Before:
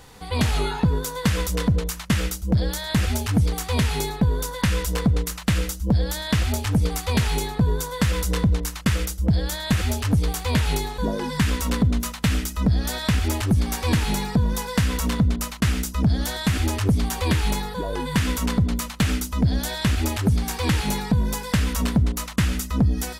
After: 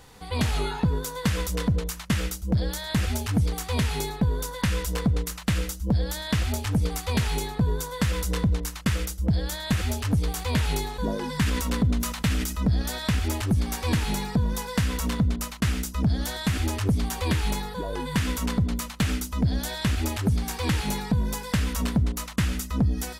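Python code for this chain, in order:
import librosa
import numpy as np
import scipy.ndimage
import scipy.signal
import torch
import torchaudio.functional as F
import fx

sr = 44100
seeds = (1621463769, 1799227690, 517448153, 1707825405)

y = fx.sustainer(x, sr, db_per_s=57.0, at=(10.33, 12.82))
y = F.gain(torch.from_numpy(y), -3.5).numpy()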